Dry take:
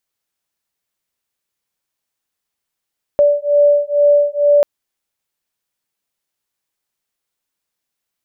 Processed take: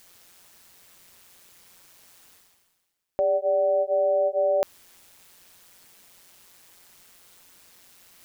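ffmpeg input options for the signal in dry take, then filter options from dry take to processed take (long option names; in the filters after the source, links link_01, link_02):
-f lavfi -i "aevalsrc='0.237*(sin(2*PI*580*t)+sin(2*PI*582.2*t))':duration=1.44:sample_rate=44100"
-af "alimiter=limit=-15.5dB:level=0:latency=1:release=26,areverse,acompressor=mode=upward:threshold=-28dB:ratio=2.5,areverse,tremolo=f=180:d=0.667"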